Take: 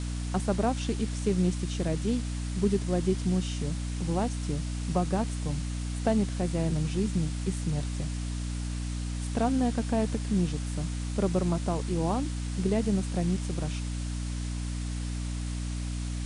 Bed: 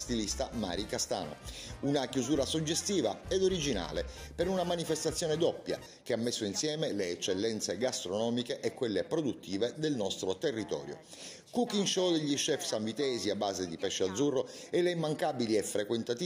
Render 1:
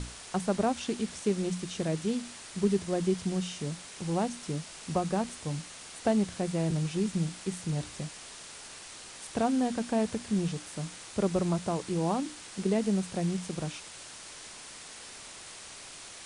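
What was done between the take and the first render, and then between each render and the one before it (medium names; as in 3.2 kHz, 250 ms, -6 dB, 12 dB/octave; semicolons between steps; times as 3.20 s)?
hum notches 60/120/180/240/300 Hz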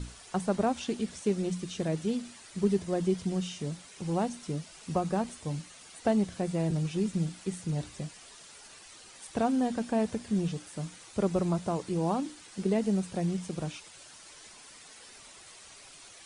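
noise reduction 9 dB, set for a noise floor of -47 dBFS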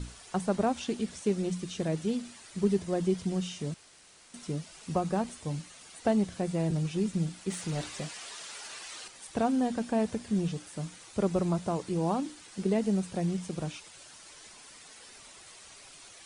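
3.74–4.34 s: room tone; 7.50–9.08 s: overdrive pedal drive 15 dB, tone 6.2 kHz, clips at -23 dBFS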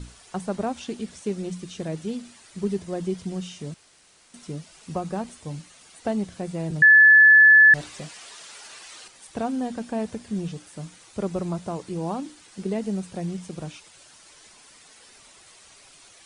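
6.82–7.74 s: bleep 1.73 kHz -9 dBFS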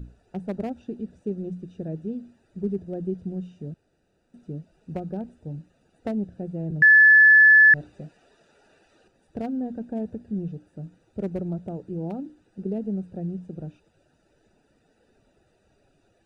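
local Wiener filter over 41 samples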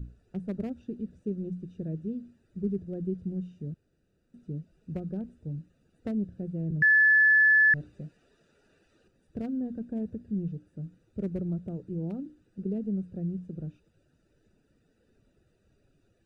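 FFT filter 130 Hz 0 dB, 510 Hz -6 dB, 810 Hz -15 dB, 1.2 kHz -7 dB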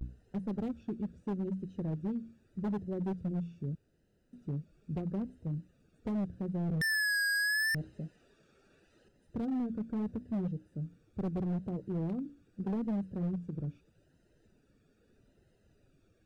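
hard clipper -30 dBFS, distortion -4 dB; vibrato 0.79 Hz 89 cents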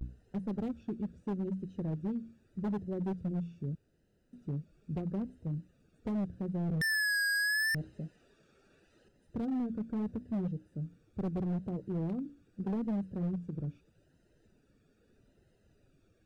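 no audible change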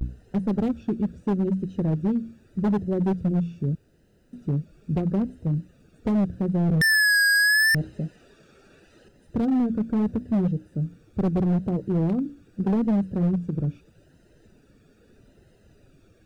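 trim +11.5 dB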